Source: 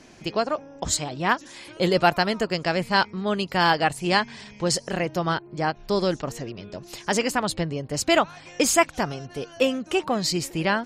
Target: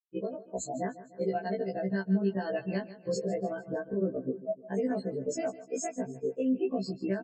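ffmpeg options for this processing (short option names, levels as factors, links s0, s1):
-filter_complex "[0:a]afftfilt=real='re*gte(hypot(re,im),0.126)':imag='im*gte(hypot(re,im),0.126)':win_size=1024:overlap=0.75,aecho=1:1:4.5:0.7,acompressor=threshold=0.0447:ratio=12,tiltshelf=f=820:g=9.5,dynaudnorm=f=720:g=7:m=1.78,highpass=300,alimiter=limit=0.106:level=0:latency=1:release=265,lowpass=11000,asplit=2[s0][s1];[s1]aecho=0:1:226|452|678|904:0.158|0.0745|0.035|0.0165[s2];[s0][s2]amix=inputs=2:normalize=0,atempo=1.5,superequalizer=9b=0.282:10b=0.282:13b=0.355:15b=2,afftfilt=real='re*1.73*eq(mod(b,3),0)':imag='im*1.73*eq(mod(b,3),0)':win_size=2048:overlap=0.75,volume=1.19"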